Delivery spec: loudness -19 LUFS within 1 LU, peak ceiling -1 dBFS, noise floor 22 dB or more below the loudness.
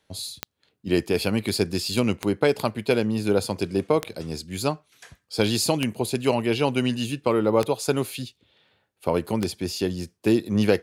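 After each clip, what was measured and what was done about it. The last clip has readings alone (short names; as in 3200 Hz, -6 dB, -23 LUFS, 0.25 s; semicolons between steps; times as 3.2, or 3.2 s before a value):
clicks 6; loudness -25.0 LUFS; peak -5.5 dBFS; loudness target -19.0 LUFS
-> de-click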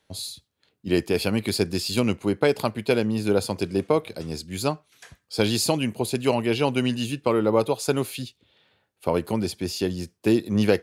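clicks 0; loudness -25.0 LUFS; peak -5.5 dBFS; loudness target -19.0 LUFS
-> gain +6 dB; limiter -1 dBFS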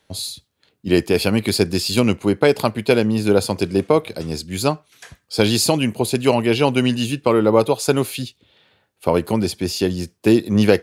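loudness -19.0 LUFS; peak -1.0 dBFS; noise floor -68 dBFS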